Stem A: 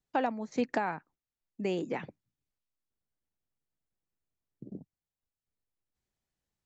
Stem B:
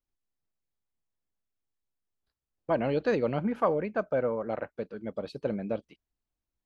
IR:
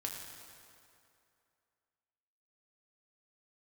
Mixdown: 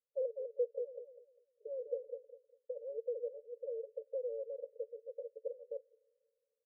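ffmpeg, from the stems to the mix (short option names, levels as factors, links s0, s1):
-filter_complex "[0:a]volume=1,asplit=2[s0][s1];[s1]volume=0.473[s2];[1:a]acompressor=threshold=0.0158:ratio=3,volume=0.891,asplit=2[s3][s4];[s4]volume=0.0708[s5];[2:a]atrim=start_sample=2205[s6];[s5][s6]afir=irnorm=-1:irlink=0[s7];[s2]aecho=0:1:200|400|600|800:1|0.26|0.0676|0.0176[s8];[s0][s3][s7][s8]amix=inputs=4:normalize=0,asuperpass=centerf=500:order=12:qfactor=3.9"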